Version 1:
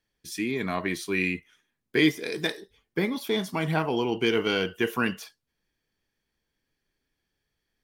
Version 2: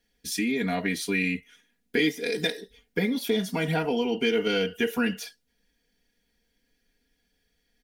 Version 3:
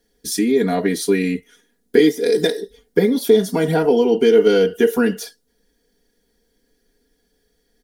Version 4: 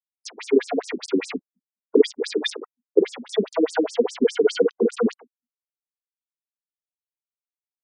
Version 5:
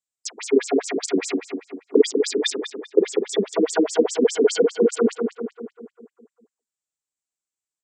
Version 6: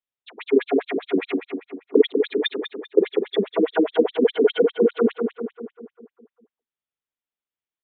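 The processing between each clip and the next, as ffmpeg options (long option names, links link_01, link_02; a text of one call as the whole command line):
ffmpeg -i in.wav -af "equalizer=frequency=1100:width=4:gain=-14.5,aecho=1:1:4.2:0.98,acompressor=threshold=-32dB:ratio=2,volume=4.5dB" out.wav
ffmpeg -i in.wav -af "equalizer=frequency=100:width_type=o:width=0.67:gain=-6,equalizer=frequency=400:width_type=o:width=0.67:gain=9,equalizer=frequency=2500:width_type=o:width=0.67:gain=-11,equalizer=frequency=10000:width_type=o:width=0.67:gain=3,volume=7dB" out.wav
ffmpeg -i in.wav -af "aeval=exprs='val(0)*gte(abs(val(0)),0.0596)':channel_layout=same,bandreject=frequency=60:width_type=h:width=6,bandreject=frequency=120:width_type=h:width=6,bandreject=frequency=180:width_type=h:width=6,bandreject=frequency=240:width_type=h:width=6,afftfilt=real='re*between(b*sr/1024,270*pow(7100/270,0.5+0.5*sin(2*PI*4.9*pts/sr))/1.41,270*pow(7100/270,0.5+0.5*sin(2*PI*4.9*pts/sr))*1.41)':imag='im*between(b*sr/1024,270*pow(7100/270,0.5+0.5*sin(2*PI*4.9*pts/sr))/1.41,270*pow(7100/270,0.5+0.5*sin(2*PI*4.9*pts/sr))*1.41)':win_size=1024:overlap=0.75,volume=3dB" out.wav
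ffmpeg -i in.wav -filter_complex "[0:a]lowpass=frequency=7600:width_type=q:width=5.7,asplit=2[link_01][link_02];[link_02]adelay=197,lowpass=frequency=2200:poles=1,volume=-5.5dB,asplit=2[link_03][link_04];[link_04]adelay=197,lowpass=frequency=2200:poles=1,volume=0.54,asplit=2[link_05][link_06];[link_06]adelay=197,lowpass=frequency=2200:poles=1,volume=0.54,asplit=2[link_07][link_08];[link_08]adelay=197,lowpass=frequency=2200:poles=1,volume=0.54,asplit=2[link_09][link_10];[link_10]adelay=197,lowpass=frequency=2200:poles=1,volume=0.54,asplit=2[link_11][link_12];[link_12]adelay=197,lowpass=frequency=2200:poles=1,volume=0.54,asplit=2[link_13][link_14];[link_14]adelay=197,lowpass=frequency=2200:poles=1,volume=0.54[link_15];[link_03][link_05][link_07][link_09][link_11][link_13][link_15]amix=inputs=7:normalize=0[link_16];[link_01][link_16]amix=inputs=2:normalize=0" out.wav
ffmpeg -i in.wav -af "aresample=8000,aresample=44100" out.wav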